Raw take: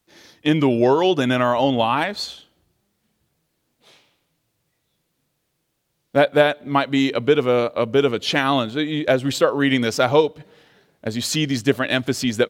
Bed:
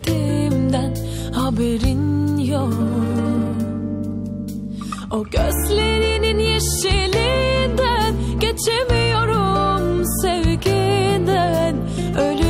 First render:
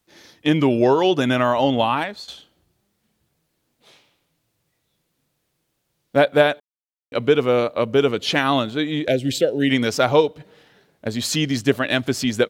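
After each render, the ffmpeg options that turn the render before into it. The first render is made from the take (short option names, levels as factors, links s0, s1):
-filter_complex "[0:a]asettb=1/sr,asplit=3[s0][s1][s2];[s0]atrim=end=9.084[s3];[s1]atrim=start=9.08:end=9.7,asetpts=PTS-STARTPTS,afade=t=in:d=0.004:c=qsin,afade=t=out:st=0.616:d=0.004:c=qsin,asuperstop=centerf=1100:order=4:qfactor=0.8[s4];[s2]atrim=start=9.696[s5];[s3][s4]acrossfade=d=0.004:c1=hsin:c2=qsin[s6];[s6][s5]acrossfade=d=0.004:c1=qsin:c2=hsin,asplit=4[s7][s8][s9][s10];[s7]atrim=end=2.28,asetpts=PTS-STARTPTS,afade=t=out:st=1.88:d=0.4:silence=0.211349[s11];[s8]atrim=start=2.28:end=6.6,asetpts=PTS-STARTPTS,afade=t=in:d=0.004:c=hsin:silence=0.211349,afade=t=out:st=4.316:d=0.004:c=hsin[s12];[s9]atrim=start=6.6:end=7.12,asetpts=PTS-STARTPTS,volume=0[s13];[s10]atrim=start=7.12,asetpts=PTS-STARTPTS,afade=t=in:d=0.004:c=hsin[s14];[s11][s12][s13][s14]concat=n=4:v=0:a=1"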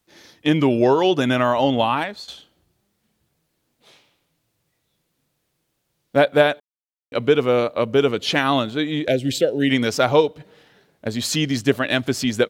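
-af anull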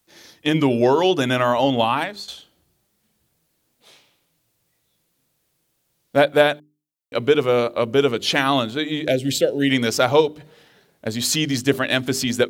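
-af "highshelf=f=6000:g=7,bandreject=f=50:t=h:w=6,bandreject=f=100:t=h:w=6,bandreject=f=150:t=h:w=6,bandreject=f=200:t=h:w=6,bandreject=f=250:t=h:w=6,bandreject=f=300:t=h:w=6,bandreject=f=350:t=h:w=6,bandreject=f=400:t=h:w=6"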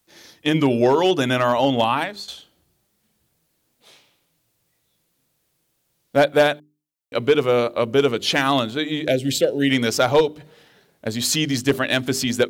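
-af "asoftclip=type=hard:threshold=0.398"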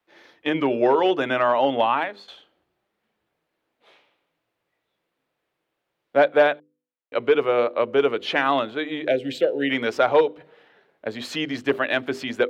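-filter_complex "[0:a]acrossover=split=300 3000:gain=0.178 1 0.0708[s0][s1][s2];[s0][s1][s2]amix=inputs=3:normalize=0,bandreject=f=247.7:t=h:w=4,bandreject=f=495.4:t=h:w=4"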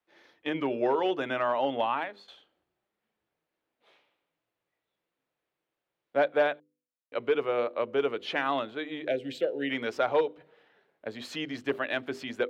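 -af "volume=0.398"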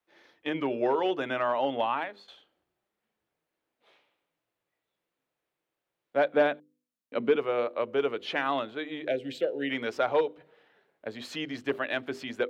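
-filter_complex "[0:a]asettb=1/sr,asplit=3[s0][s1][s2];[s0]atrim=end=6.334[s3];[s1]atrim=start=6.33:end=7.36,asetpts=PTS-STARTPTS,afade=t=in:d=0.004:c=qsin,afade=t=out:st=1.026:d=0.004:c=qsin,equalizer=f=220:t=o:w=0.77:g=15[s4];[s2]atrim=start=7.356[s5];[s3][s4]acrossfade=d=0.004:c1=hsin:c2=qsin[s6];[s6][s5]acrossfade=d=0.004:c1=qsin:c2=hsin"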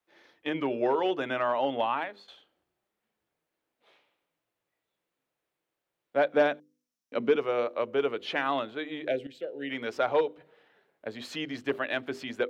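-filter_complex "[0:a]asettb=1/sr,asplit=3[s0][s1][s2];[s0]atrim=end=6.304[s3];[s1]atrim=start=6.3:end=7.87,asetpts=PTS-STARTPTS,afade=t=in:d=0.004:c=qsin,afade=t=out:st=1.566:d=0.004:c=qsin,equalizer=f=5700:w=3.8:g=10[s4];[s2]atrim=start=7.866[s5];[s3][s4]acrossfade=d=0.004:c1=hsin:c2=qsin[s6];[s6][s5]acrossfade=d=0.004:c1=qsin:c2=hsin,asplit=2[s7][s8];[s7]atrim=end=9.27,asetpts=PTS-STARTPTS,afade=t=out:st=9.266:d=0.004:c=hsin:silence=0.223872[s9];[s8]atrim=start=9.27,asetpts=PTS-STARTPTS,afade=t=in:d=0.78:silence=0.223872[s10];[s9][s10]concat=n=2:v=0:a=1"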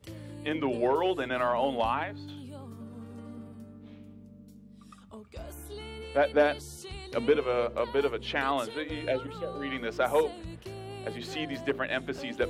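-filter_complex "[1:a]volume=0.0596[s0];[0:a][s0]amix=inputs=2:normalize=0"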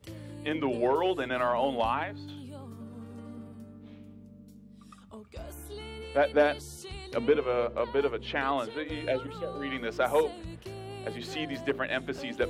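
-filter_complex "[0:a]asettb=1/sr,asplit=3[s0][s1][s2];[s0]atrim=end=7.164[s3];[s1]atrim=start=7.16:end=8.86,asetpts=PTS-STARTPTS,afade=t=in:d=0.004:c=qsin,afade=t=out:st=1.696:d=0.004:c=qsin,lowpass=f=3400:p=1[s4];[s2]atrim=start=8.856[s5];[s3][s4]acrossfade=d=0.004:c1=hsin:c2=qsin[s6];[s6][s5]acrossfade=d=0.004:c1=qsin:c2=hsin"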